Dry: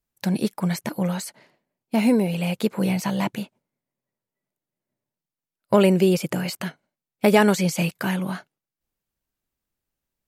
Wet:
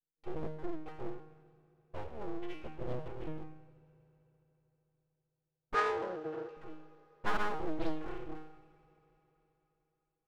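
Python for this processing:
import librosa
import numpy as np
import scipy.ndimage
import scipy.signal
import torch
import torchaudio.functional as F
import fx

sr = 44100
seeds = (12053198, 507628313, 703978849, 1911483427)

p1 = fx.wiener(x, sr, points=41)
p2 = fx.env_lowpass_down(p1, sr, base_hz=1500.0, full_db=-18.0)
p3 = 10.0 ** (-21.5 / 20.0) * np.tanh(p2 / 10.0 ** (-21.5 / 20.0))
p4 = p2 + (p3 * 10.0 ** (-11.0 / 20.0))
p5 = fx.env_flanger(p4, sr, rest_ms=6.6, full_db=-17.0)
p6 = fx.octave_resonator(p5, sr, note='D#', decay_s=0.74)
p7 = np.abs(p6)
p8 = fx.cabinet(p7, sr, low_hz=440.0, low_slope=12, high_hz=7100.0, hz=(450.0, 830.0, 1500.0, 2300.0), db=(8, -5, 7, -4), at=(5.74, 6.57))
p9 = fx.rev_fdn(p8, sr, rt60_s=3.9, lf_ratio=1.0, hf_ratio=0.95, size_ms=36.0, drr_db=16.5)
p10 = fx.doppler_dist(p9, sr, depth_ms=0.67)
y = p10 * 10.0 ** (9.5 / 20.0)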